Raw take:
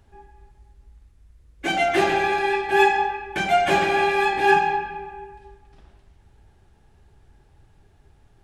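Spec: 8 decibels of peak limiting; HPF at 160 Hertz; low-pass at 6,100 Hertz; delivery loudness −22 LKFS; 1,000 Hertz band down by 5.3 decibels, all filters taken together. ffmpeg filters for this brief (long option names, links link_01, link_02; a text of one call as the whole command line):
ffmpeg -i in.wav -af "highpass=160,lowpass=6100,equalizer=frequency=1000:width_type=o:gain=-7.5,volume=3dB,alimiter=limit=-12.5dB:level=0:latency=1" out.wav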